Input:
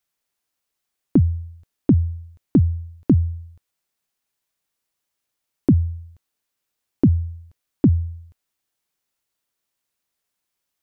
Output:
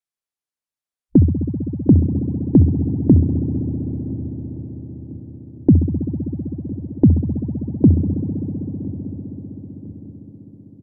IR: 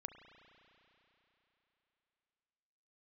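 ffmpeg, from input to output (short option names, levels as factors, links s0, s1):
-filter_complex "[0:a]afwtdn=0.0282,asplit=2[s0][s1];[s1]adelay=1007,lowpass=f=1100:p=1,volume=0.0944,asplit=2[s2][s3];[s3]adelay=1007,lowpass=f=1100:p=1,volume=0.5,asplit=2[s4][s5];[s5]adelay=1007,lowpass=f=1100:p=1,volume=0.5,asplit=2[s6][s7];[s7]adelay=1007,lowpass=f=1100:p=1,volume=0.5[s8];[s0][s2][s4][s6][s8]amix=inputs=5:normalize=0[s9];[1:a]atrim=start_sample=2205,asetrate=22932,aresample=44100[s10];[s9][s10]afir=irnorm=-1:irlink=0,volume=1.88"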